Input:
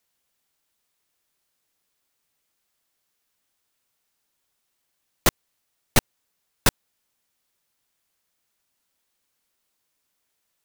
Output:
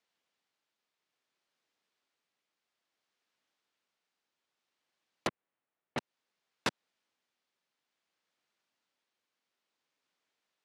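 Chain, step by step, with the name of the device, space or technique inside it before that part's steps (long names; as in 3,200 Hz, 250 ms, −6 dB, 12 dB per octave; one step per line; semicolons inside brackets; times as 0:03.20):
AM radio (band-pass filter 190–4,400 Hz; downward compressor, threshold −23 dBFS, peak gain reduction 7.5 dB; soft clipping −16.5 dBFS, distortion −16 dB; amplitude tremolo 0.59 Hz, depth 27%)
0:05.27–0:05.98: high-frequency loss of the air 500 metres
level −3 dB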